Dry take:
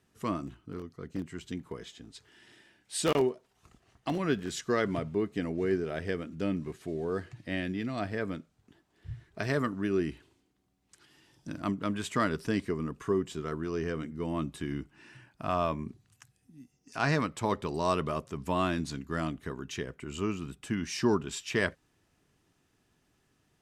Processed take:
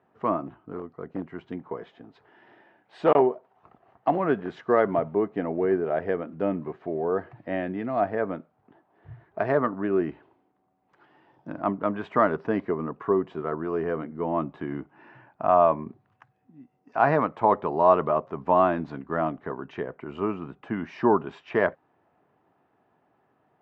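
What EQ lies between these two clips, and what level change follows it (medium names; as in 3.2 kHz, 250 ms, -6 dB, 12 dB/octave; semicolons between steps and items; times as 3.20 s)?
band-pass 120–2000 Hz; distance through air 100 m; peaking EQ 760 Hz +14.5 dB 1.6 oct; 0.0 dB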